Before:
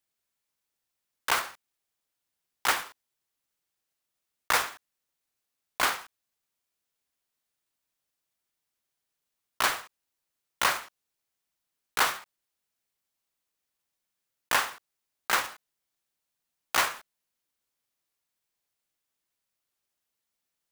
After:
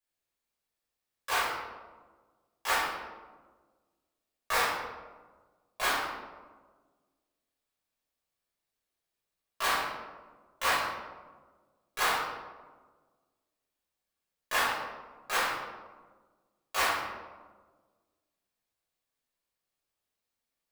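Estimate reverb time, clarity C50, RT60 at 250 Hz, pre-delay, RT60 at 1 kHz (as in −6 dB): 1.4 s, 0.0 dB, 1.8 s, 4 ms, 1.3 s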